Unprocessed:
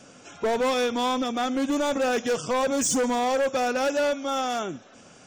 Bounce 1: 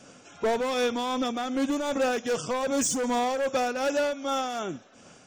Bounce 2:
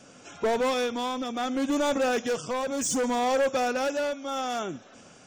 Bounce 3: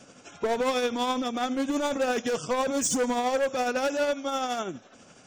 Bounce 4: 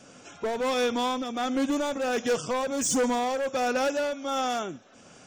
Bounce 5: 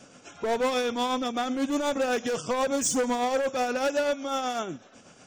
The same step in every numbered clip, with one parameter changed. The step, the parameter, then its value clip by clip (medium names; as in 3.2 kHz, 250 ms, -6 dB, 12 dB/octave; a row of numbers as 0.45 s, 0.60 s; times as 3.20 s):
tremolo, rate: 2.6 Hz, 0.66 Hz, 12 Hz, 1.4 Hz, 8.1 Hz